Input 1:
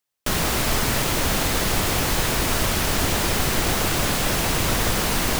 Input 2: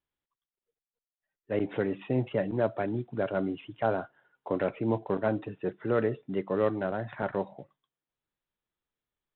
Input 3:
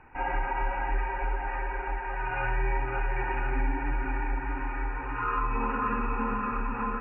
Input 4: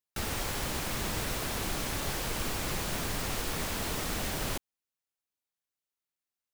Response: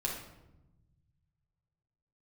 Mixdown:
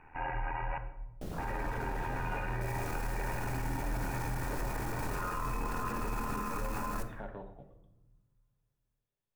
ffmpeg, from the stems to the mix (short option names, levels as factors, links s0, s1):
-filter_complex "[0:a]afwtdn=0.0794,adelay=950,volume=0.188[s0];[1:a]acompressor=threshold=0.0126:ratio=2.5,volume=0.335,asplit=2[s1][s2];[s2]volume=0.531[s3];[2:a]tremolo=f=81:d=0.71,volume=0.708,asplit=3[s4][s5][s6];[s4]atrim=end=0.78,asetpts=PTS-STARTPTS,afade=t=out:st=0.776:d=0.004:c=hsin[s7];[s5]atrim=start=0.78:end=1.38,asetpts=PTS-STARTPTS,volume=0[s8];[s6]atrim=start=1.38,asetpts=PTS-STARTPTS,afade=t=in:d=0.004:c=hsin[s9];[s7][s8][s9]concat=n=3:v=0:a=1,asplit=2[s10][s11];[s11]volume=0.376[s12];[3:a]equalizer=f=3300:w=2:g=-13,aeval=exprs='(tanh(70.8*val(0)+0.55)-tanh(0.55))/70.8':c=same,adelay=2450,volume=0.596,asplit=2[s13][s14];[s14]volume=0.376[s15];[4:a]atrim=start_sample=2205[s16];[s3][s12][s15]amix=inputs=3:normalize=0[s17];[s17][s16]afir=irnorm=-1:irlink=0[s18];[s0][s1][s10][s13][s18]amix=inputs=5:normalize=0,alimiter=level_in=1.41:limit=0.0631:level=0:latency=1:release=20,volume=0.708"